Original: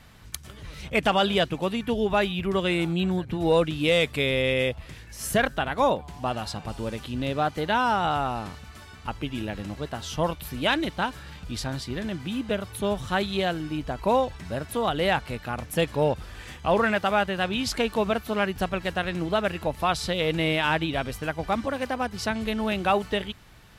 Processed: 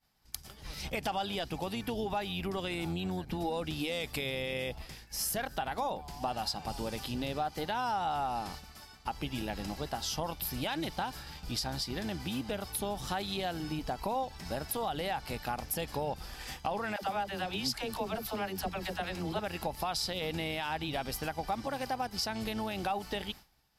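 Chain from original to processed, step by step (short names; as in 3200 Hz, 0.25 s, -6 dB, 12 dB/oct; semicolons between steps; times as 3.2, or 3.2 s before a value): octaver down 1 oct, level -5 dB; high shelf 3600 Hz +6 dB; limiter -17.5 dBFS, peak gain reduction 8.5 dB; thirty-one-band EQ 100 Hz -9 dB, 800 Hz +10 dB, 5000 Hz +10 dB, 12500 Hz +8 dB; expander -35 dBFS; compressor 3:1, threshold -30 dBFS, peak gain reduction 10.5 dB; 16.96–19.39 dispersion lows, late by 64 ms, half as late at 480 Hz; gain -3 dB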